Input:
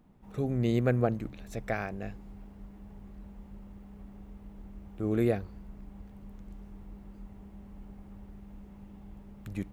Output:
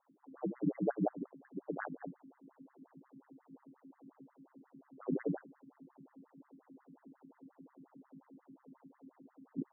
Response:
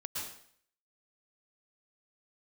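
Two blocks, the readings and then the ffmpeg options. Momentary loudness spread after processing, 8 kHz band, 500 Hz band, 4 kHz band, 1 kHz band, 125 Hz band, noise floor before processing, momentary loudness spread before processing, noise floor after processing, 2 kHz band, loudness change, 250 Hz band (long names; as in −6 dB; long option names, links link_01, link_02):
24 LU, can't be measured, −8.5 dB, below −30 dB, −6.0 dB, −14.0 dB, −51 dBFS, 22 LU, −74 dBFS, −10.5 dB, −8.0 dB, −6.5 dB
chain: -af "aeval=exprs='val(0)*sin(2*PI*69*n/s)':channel_layout=same,afftfilt=real='re*between(b*sr/1024,210*pow(1500/210,0.5+0.5*sin(2*PI*5.6*pts/sr))/1.41,210*pow(1500/210,0.5+0.5*sin(2*PI*5.6*pts/sr))*1.41)':imag='im*between(b*sr/1024,210*pow(1500/210,0.5+0.5*sin(2*PI*5.6*pts/sr))/1.41,210*pow(1500/210,0.5+0.5*sin(2*PI*5.6*pts/sr))*1.41)':win_size=1024:overlap=0.75,volume=3dB"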